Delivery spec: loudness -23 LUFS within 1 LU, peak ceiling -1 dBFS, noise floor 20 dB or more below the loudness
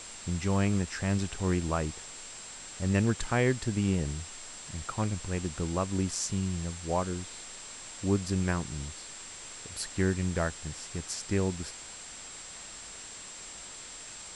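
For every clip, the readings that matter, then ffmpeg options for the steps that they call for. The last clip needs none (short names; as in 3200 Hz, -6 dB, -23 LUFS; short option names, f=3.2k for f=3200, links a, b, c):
steady tone 7600 Hz; tone level -46 dBFS; noise floor -45 dBFS; noise floor target -53 dBFS; loudness -33.0 LUFS; peak -11.5 dBFS; loudness target -23.0 LUFS
-> -af "bandreject=f=7.6k:w=30"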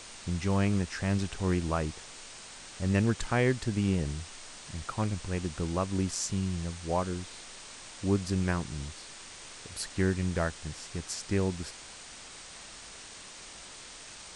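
steady tone none; noise floor -47 dBFS; noise floor target -52 dBFS
-> -af "afftdn=nr=6:nf=-47"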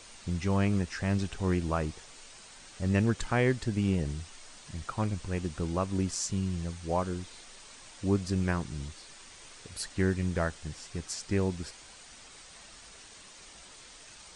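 noise floor -52 dBFS; loudness -31.5 LUFS; peak -12.0 dBFS; loudness target -23.0 LUFS
-> -af "volume=8.5dB"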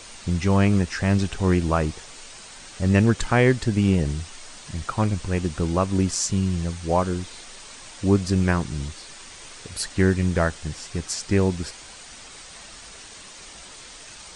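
loudness -23.0 LUFS; peak -3.5 dBFS; noise floor -43 dBFS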